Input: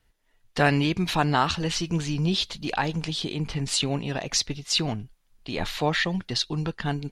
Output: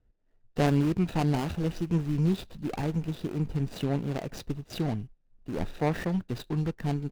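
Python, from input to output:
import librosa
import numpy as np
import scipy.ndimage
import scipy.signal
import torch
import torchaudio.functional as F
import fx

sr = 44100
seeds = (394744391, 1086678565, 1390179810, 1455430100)

y = scipy.ndimage.median_filter(x, 41, mode='constant')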